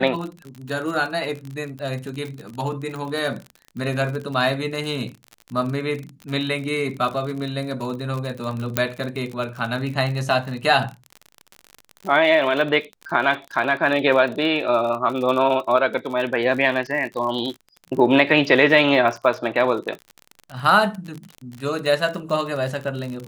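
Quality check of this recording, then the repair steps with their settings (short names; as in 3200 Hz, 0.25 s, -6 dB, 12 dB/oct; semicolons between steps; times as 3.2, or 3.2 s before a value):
crackle 50/s -28 dBFS
8.77 pop -2 dBFS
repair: de-click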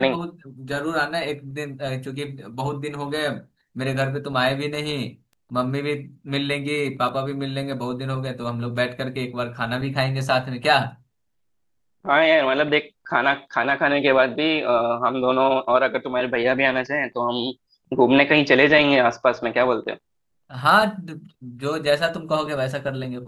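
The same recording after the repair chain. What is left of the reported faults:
8.77 pop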